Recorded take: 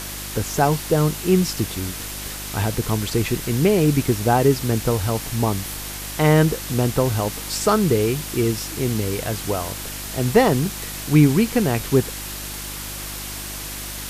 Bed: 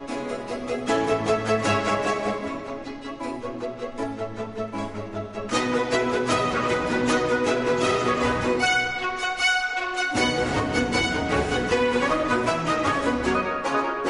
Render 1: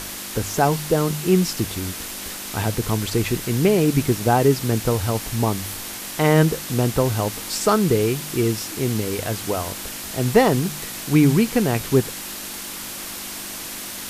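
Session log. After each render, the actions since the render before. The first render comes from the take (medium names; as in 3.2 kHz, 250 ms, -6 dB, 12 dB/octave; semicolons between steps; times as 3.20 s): de-hum 50 Hz, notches 3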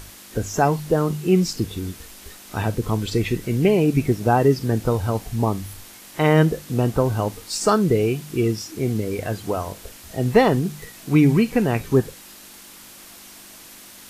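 noise print and reduce 11 dB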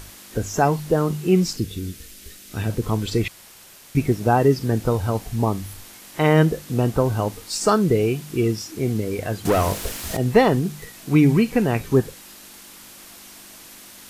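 1.57–2.70 s: peaking EQ 900 Hz -13 dB 1.2 oct; 3.28–3.95 s: room tone; 9.45–10.17 s: waveshaping leveller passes 3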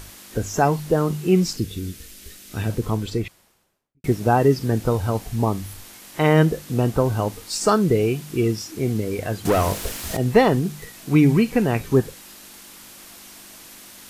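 2.68–4.04 s: studio fade out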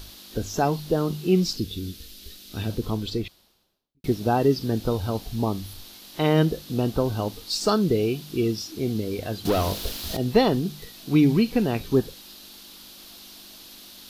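ten-band graphic EQ 125 Hz -6 dB, 500 Hz -3 dB, 1 kHz -4 dB, 2 kHz -9 dB, 4 kHz +9 dB, 8 kHz -10 dB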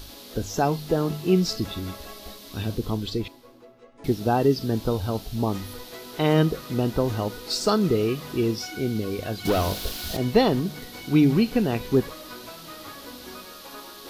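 add bed -19 dB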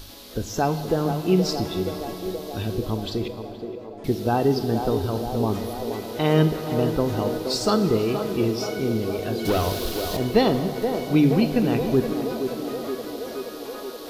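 on a send: band-passed feedback delay 474 ms, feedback 81%, band-pass 520 Hz, level -6 dB; on the sum: plate-style reverb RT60 3.5 s, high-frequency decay 0.65×, DRR 10 dB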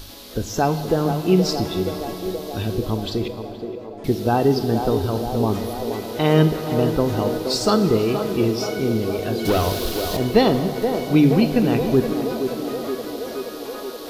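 trim +3 dB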